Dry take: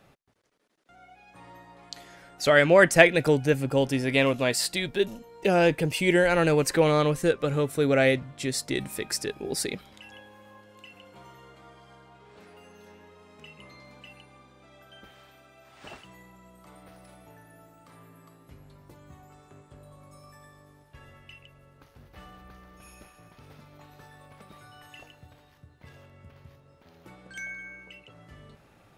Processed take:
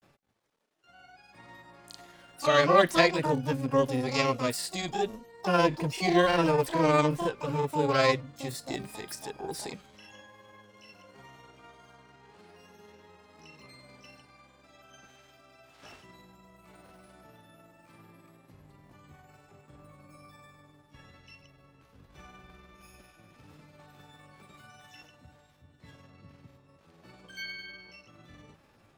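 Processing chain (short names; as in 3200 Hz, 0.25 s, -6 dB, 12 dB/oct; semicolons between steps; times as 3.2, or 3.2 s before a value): harmonic-percussive split harmonic +7 dB; harmoniser +12 st -4 dB; grains 0.1 s, spray 20 ms, pitch spread up and down by 0 st; gain -9 dB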